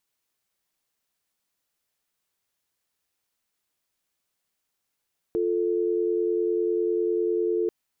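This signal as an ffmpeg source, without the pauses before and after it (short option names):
-f lavfi -i "aevalsrc='0.0596*(sin(2*PI*350*t)+sin(2*PI*440*t))':d=2.34:s=44100"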